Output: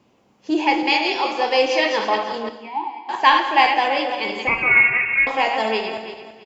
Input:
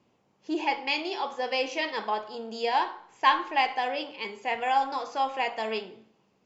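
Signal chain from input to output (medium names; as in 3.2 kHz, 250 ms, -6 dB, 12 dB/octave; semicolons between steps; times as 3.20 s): backward echo that repeats 166 ms, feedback 49%, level -6 dB; 2.49–3.09 s: vowel filter u; 4.47–5.27 s: frequency inversion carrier 3 kHz; delay 193 ms -15.5 dB; gated-style reverb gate 290 ms falling, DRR 8 dB; trim +8 dB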